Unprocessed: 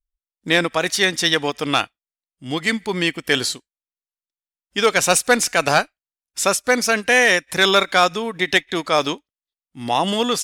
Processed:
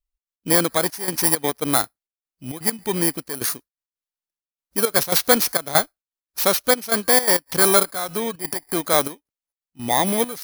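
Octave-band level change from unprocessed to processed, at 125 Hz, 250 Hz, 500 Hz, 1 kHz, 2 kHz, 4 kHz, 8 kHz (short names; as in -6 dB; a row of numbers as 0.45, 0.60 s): -1.5, -1.5, -2.5, -3.5, -8.5, -6.0, +1.5 dB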